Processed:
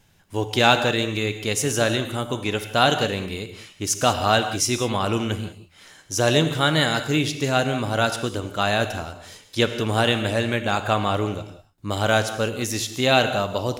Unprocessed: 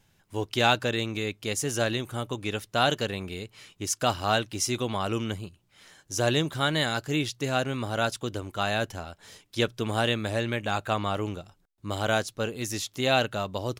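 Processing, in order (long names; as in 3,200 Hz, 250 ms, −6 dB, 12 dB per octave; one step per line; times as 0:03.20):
reverb whose tail is shaped and stops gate 220 ms flat, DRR 8.5 dB
level +5.5 dB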